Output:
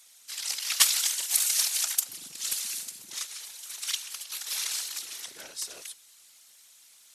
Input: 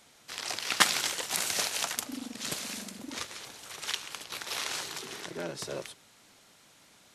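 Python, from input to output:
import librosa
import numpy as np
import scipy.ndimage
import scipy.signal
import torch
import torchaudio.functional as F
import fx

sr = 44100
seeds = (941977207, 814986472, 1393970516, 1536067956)

y = F.preemphasis(torch.from_numpy(x), 0.97).numpy()
y = fx.whisperise(y, sr, seeds[0])
y = y * librosa.db_to_amplitude(7.0)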